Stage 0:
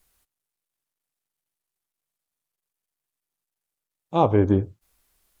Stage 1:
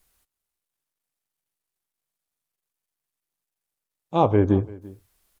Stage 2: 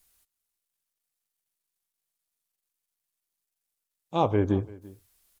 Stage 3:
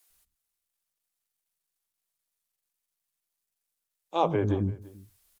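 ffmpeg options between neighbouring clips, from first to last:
ffmpeg -i in.wav -af "aecho=1:1:340:0.0841" out.wav
ffmpeg -i in.wav -af "highshelf=frequency=2500:gain=8,volume=-5.5dB" out.wav
ffmpeg -i in.wav -filter_complex "[0:a]acrossover=split=280[link_01][link_02];[link_01]adelay=100[link_03];[link_03][link_02]amix=inputs=2:normalize=0" out.wav

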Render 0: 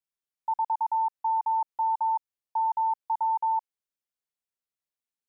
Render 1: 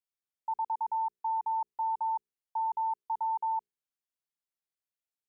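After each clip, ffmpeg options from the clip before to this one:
ffmpeg -i in.wav -af "bandreject=frequency=60:width_type=h:width=6,bandreject=frequency=120:width_type=h:width=6,bandreject=frequency=180:width_type=h:width=6,bandreject=frequency=240:width_type=h:width=6,bandreject=frequency=300:width_type=h:width=6,bandreject=frequency=360:width_type=h:width=6,bandreject=frequency=420:width_type=h:width=6,bandreject=frequency=480:width_type=h:width=6,volume=-5dB" out.wav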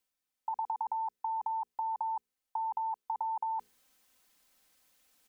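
ffmpeg -i in.wav -af "aecho=1:1:3.9:0.65,areverse,acompressor=mode=upward:threshold=-57dB:ratio=2.5,areverse,volume=4.5dB" out.wav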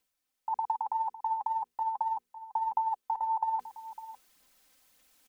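ffmpeg -i in.wav -filter_complex "[0:a]aphaser=in_gain=1:out_gain=1:delay=3.9:decay=0.34:speed=1.8:type=sinusoidal,asplit=2[link_01][link_02];[link_02]adelay=553.9,volume=-14dB,highshelf=frequency=4000:gain=-12.5[link_03];[link_01][link_03]amix=inputs=2:normalize=0,volume=3dB" out.wav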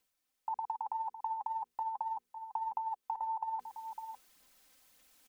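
ffmpeg -i in.wav -af "acompressor=threshold=-34dB:ratio=6" out.wav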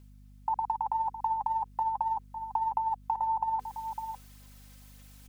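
ffmpeg -i in.wav -af "aeval=exprs='val(0)+0.00112*(sin(2*PI*50*n/s)+sin(2*PI*2*50*n/s)/2+sin(2*PI*3*50*n/s)/3+sin(2*PI*4*50*n/s)/4+sin(2*PI*5*50*n/s)/5)':channel_layout=same,volume=7dB" out.wav

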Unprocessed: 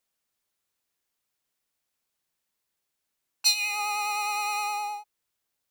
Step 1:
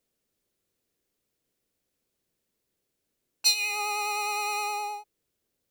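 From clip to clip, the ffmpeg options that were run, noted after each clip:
ffmpeg -i in.wav -af "lowshelf=frequency=630:width_type=q:width=1.5:gain=9.5" out.wav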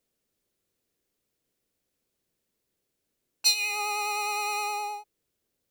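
ffmpeg -i in.wav -af anull out.wav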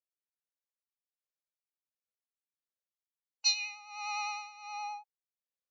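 ffmpeg -i in.wav -af "afftdn=noise_reduction=15:noise_floor=-45,afftfilt=real='re*between(b*sr/4096,480,7200)':imag='im*between(b*sr/4096,480,7200)':win_size=4096:overlap=0.75,tremolo=f=1.4:d=0.87,volume=-5dB" out.wav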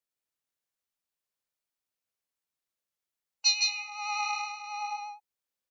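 ffmpeg -i in.wav -af "aecho=1:1:161:0.668,volume=3.5dB" out.wav

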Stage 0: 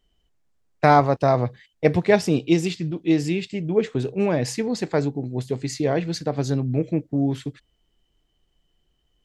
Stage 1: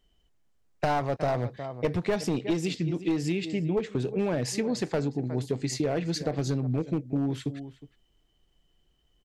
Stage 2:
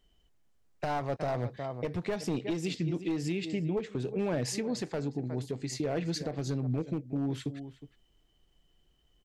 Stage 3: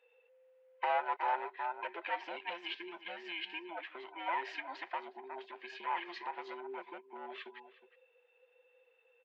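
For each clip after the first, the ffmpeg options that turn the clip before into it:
ffmpeg -i in.wav -filter_complex "[0:a]asplit=2[link_01][link_02];[link_02]adelay=361.5,volume=-18dB,highshelf=frequency=4000:gain=-8.13[link_03];[link_01][link_03]amix=inputs=2:normalize=0,aeval=exprs='clip(val(0),-1,0.178)':channel_layout=same,acompressor=threshold=-24dB:ratio=6" out.wav
ffmpeg -i in.wav -af "alimiter=limit=-23dB:level=0:latency=1:release=484" out.wav
ffmpeg -i in.wav -af "afftfilt=real='real(if(between(b,1,1008),(2*floor((b-1)/24)+1)*24-b,b),0)':imag='imag(if(between(b,1,1008),(2*floor((b-1)/24)+1)*24-b,b),0)*if(between(b,1,1008),-1,1)':win_size=2048:overlap=0.75,asuperpass=centerf=1300:order=8:qfactor=0.55,equalizer=frequency=1000:width=1.8:gain=-6,volume=5dB" out.wav

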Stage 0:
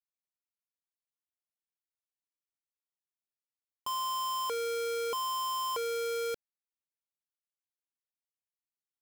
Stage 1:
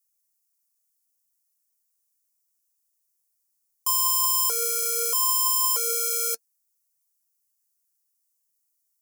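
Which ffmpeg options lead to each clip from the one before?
ffmpeg -i in.wav -filter_complex "[0:a]acrossover=split=540|4700[link_01][link_02][link_03];[link_01]acompressor=threshold=-47dB:ratio=6[link_04];[link_04][link_02][link_03]amix=inputs=3:normalize=0,aexciter=amount=9.5:drive=2.8:freq=5100,flanger=delay=0.8:depth=4.8:regen=57:speed=0.57:shape=triangular,volume=6dB" out.wav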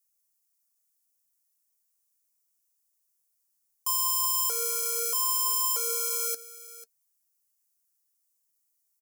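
ffmpeg -i in.wav -filter_complex "[0:a]asplit=2[link_01][link_02];[link_02]alimiter=limit=-22dB:level=0:latency=1,volume=0.5dB[link_03];[link_01][link_03]amix=inputs=2:normalize=0,aecho=1:1:493:0.15,volume=-7dB" out.wav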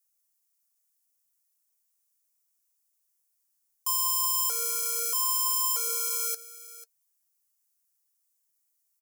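ffmpeg -i in.wav -af "highpass=590" out.wav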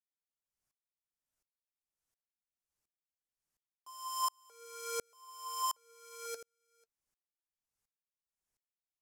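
ffmpeg -i in.wav -af "aemphasis=mode=reproduction:type=riaa,aeval=exprs='val(0)*pow(10,-40*if(lt(mod(-1.4*n/s,1),2*abs(-1.4)/1000),1-mod(-1.4*n/s,1)/(2*abs(-1.4)/1000),(mod(-1.4*n/s,1)-2*abs(-1.4)/1000)/(1-2*abs(-1.4)/1000))/20)':channel_layout=same,volume=5.5dB" out.wav

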